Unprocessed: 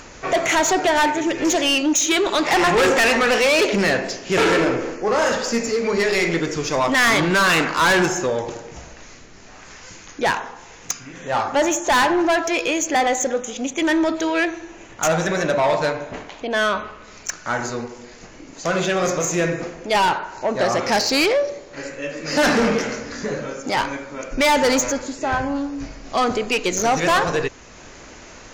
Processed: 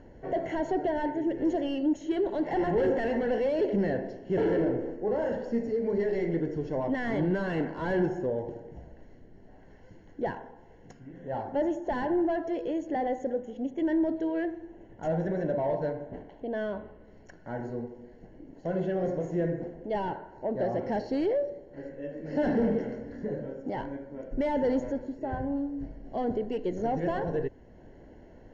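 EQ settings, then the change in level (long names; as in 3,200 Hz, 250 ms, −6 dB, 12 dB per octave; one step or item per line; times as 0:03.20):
moving average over 36 samples
high-frequency loss of the air 70 metres
−5.5 dB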